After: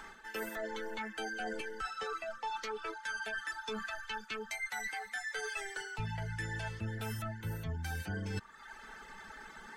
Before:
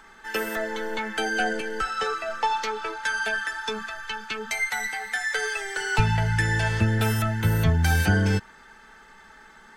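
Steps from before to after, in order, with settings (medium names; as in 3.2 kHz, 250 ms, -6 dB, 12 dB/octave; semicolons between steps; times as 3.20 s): reverb removal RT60 0.65 s; reverse; compression 6:1, threshold -39 dBFS, peak gain reduction 21.5 dB; reverse; trim +1.5 dB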